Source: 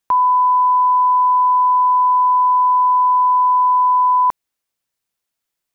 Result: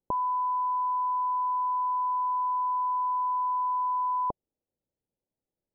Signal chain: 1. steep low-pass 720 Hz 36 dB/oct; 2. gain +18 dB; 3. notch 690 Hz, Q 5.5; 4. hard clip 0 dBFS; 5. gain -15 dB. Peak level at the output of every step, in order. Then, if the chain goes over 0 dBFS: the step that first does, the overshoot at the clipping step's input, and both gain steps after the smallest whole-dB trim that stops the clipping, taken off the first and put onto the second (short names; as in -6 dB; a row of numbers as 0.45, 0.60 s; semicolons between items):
-18.5, -0.5, -1.5, -1.5, -16.5 dBFS; no overload